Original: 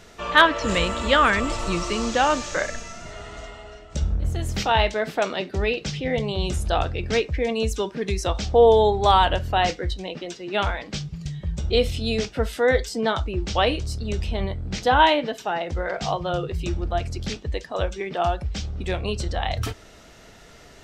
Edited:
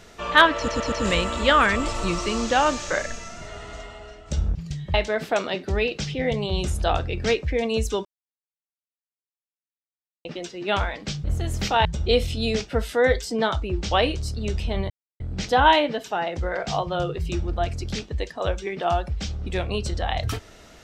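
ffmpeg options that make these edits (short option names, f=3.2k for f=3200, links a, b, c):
-filter_complex "[0:a]asplit=11[a][b][c][d][e][f][g][h][i][j][k];[a]atrim=end=0.682[l];[b]atrim=start=0.558:end=0.682[m];[c]atrim=start=0.558:end=0.682[n];[d]atrim=start=0.558:end=4.192[o];[e]atrim=start=11.098:end=11.492[p];[f]atrim=start=4.798:end=7.91,asetpts=PTS-STARTPTS,afade=t=out:st=3.108:d=0.004:c=hsin[q];[g]atrim=start=7.91:end=10.11,asetpts=PTS-STARTPTS,volume=0[r];[h]atrim=start=10.11:end=11.102,asetpts=PTS-STARTPTS,afade=t=in:d=0.004:c=hsin[s];[i]atrim=start=4.188:end=4.802[t];[j]atrim=start=11.488:end=14.54,asetpts=PTS-STARTPTS,afade=t=out:st=3.048:d=0.004:c=hsin,apad=pad_dur=0.3[u];[k]atrim=start=14.54,asetpts=PTS-STARTPTS,afade=t=in:d=0.004:c=hsin[v];[l][m]acrossfade=d=0.004:c1=hsin:c2=hsin[w];[w][n]acrossfade=d=0.004:c1=hsin:c2=hsin[x];[x][o]acrossfade=d=0.004:c1=hsin:c2=hsin[y];[y][p]acrossfade=d=0.004:c1=hsin:c2=hsin[z];[q][r][s]concat=n=3:v=0:a=1[aa];[z][aa]acrossfade=d=0.004:c1=hsin:c2=hsin[ab];[ab][t]acrossfade=d=0.004:c1=hsin:c2=hsin[ac];[u][v]concat=n=2:v=0:a=1[ad];[ac][ad]acrossfade=d=0.004:c1=hsin:c2=hsin"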